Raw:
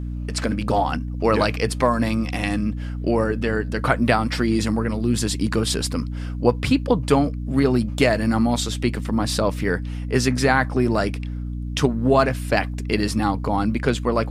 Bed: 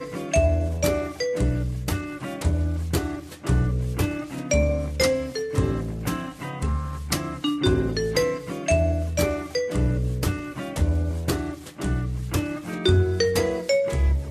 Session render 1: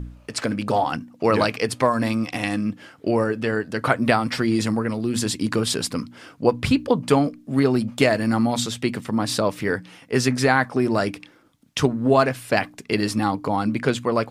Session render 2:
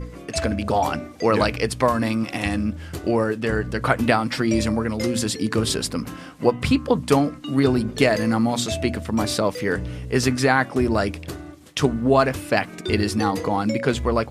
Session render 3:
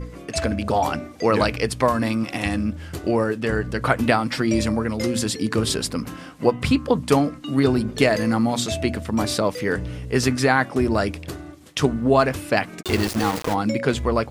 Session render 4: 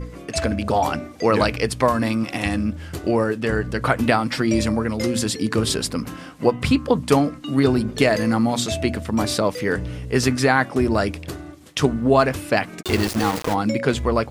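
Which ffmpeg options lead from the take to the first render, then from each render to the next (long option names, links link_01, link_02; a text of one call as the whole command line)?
ffmpeg -i in.wav -af "bandreject=frequency=60:width_type=h:width=4,bandreject=frequency=120:width_type=h:width=4,bandreject=frequency=180:width_type=h:width=4,bandreject=frequency=240:width_type=h:width=4,bandreject=frequency=300:width_type=h:width=4" out.wav
ffmpeg -i in.wav -i bed.wav -filter_complex "[1:a]volume=-8.5dB[link_01];[0:a][link_01]amix=inputs=2:normalize=0" out.wav
ffmpeg -i in.wav -filter_complex "[0:a]asplit=3[link_01][link_02][link_03];[link_01]afade=type=out:start_time=12.81:duration=0.02[link_04];[link_02]aeval=exprs='val(0)*gte(abs(val(0)),0.0668)':channel_layout=same,afade=type=in:start_time=12.81:duration=0.02,afade=type=out:start_time=13.53:duration=0.02[link_05];[link_03]afade=type=in:start_time=13.53:duration=0.02[link_06];[link_04][link_05][link_06]amix=inputs=3:normalize=0" out.wav
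ffmpeg -i in.wav -af "volume=1dB,alimiter=limit=-3dB:level=0:latency=1" out.wav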